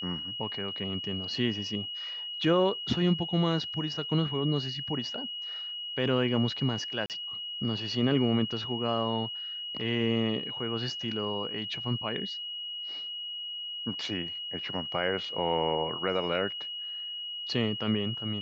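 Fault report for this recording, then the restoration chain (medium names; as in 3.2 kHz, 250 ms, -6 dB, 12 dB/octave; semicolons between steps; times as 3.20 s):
whine 2.9 kHz -35 dBFS
7.06–7.10 s: dropout 38 ms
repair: band-stop 2.9 kHz, Q 30; interpolate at 7.06 s, 38 ms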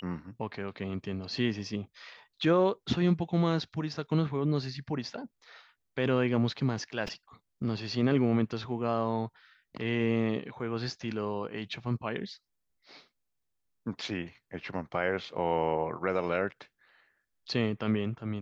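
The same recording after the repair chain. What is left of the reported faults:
nothing left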